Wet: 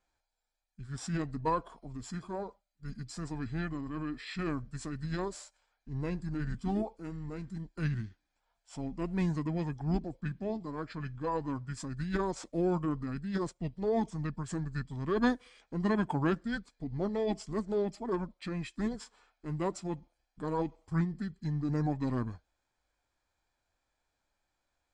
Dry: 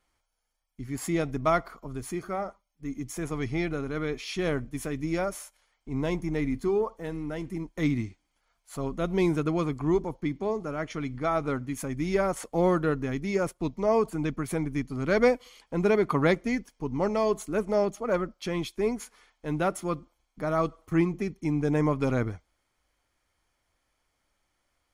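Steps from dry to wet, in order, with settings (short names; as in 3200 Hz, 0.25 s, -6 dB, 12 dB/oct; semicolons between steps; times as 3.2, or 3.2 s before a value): formant shift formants -5 st; downsampling 22050 Hz; gain -6 dB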